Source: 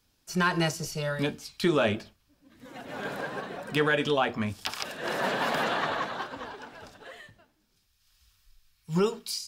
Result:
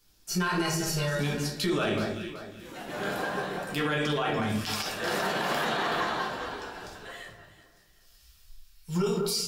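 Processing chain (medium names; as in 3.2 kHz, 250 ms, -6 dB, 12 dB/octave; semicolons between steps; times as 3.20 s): treble shelf 4.2 kHz +7.5 dB; echo whose repeats swap between lows and highs 189 ms, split 1.8 kHz, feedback 55%, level -9 dB; simulated room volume 45 m³, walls mixed, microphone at 0.81 m; peak limiter -17.5 dBFS, peak gain reduction 10.5 dB; trim -2 dB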